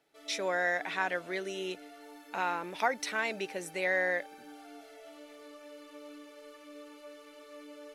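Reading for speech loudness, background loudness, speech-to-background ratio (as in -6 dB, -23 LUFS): -33.0 LUFS, -50.5 LUFS, 17.5 dB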